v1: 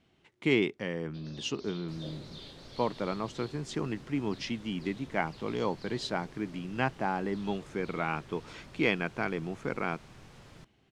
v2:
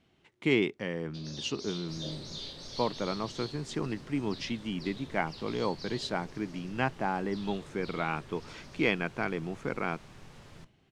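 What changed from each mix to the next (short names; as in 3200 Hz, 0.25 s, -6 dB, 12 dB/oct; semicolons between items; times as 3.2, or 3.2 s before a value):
first sound: remove air absorption 220 m; reverb: on, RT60 0.35 s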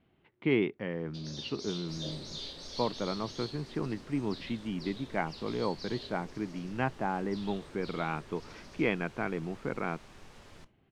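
speech: add air absorption 350 m; second sound: add bell 140 Hz -9.5 dB 0.81 oct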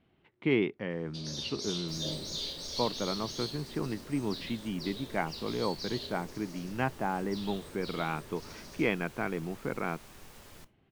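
first sound: send +9.5 dB; master: remove air absorption 72 m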